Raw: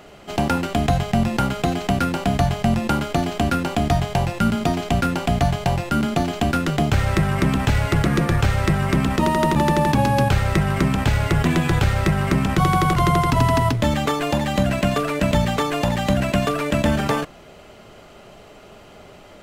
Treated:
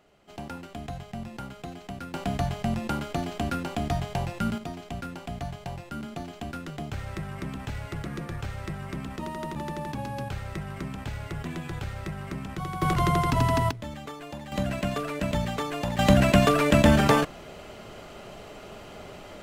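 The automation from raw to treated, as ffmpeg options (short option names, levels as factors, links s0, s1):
-af "asetnsamples=n=441:p=0,asendcmd='2.14 volume volume -9dB;4.58 volume volume -16dB;12.82 volume volume -6dB;13.71 volume volume -18dB;14.52 volume volume -9dB;15.99 volume volume 1dB',volume=0.126"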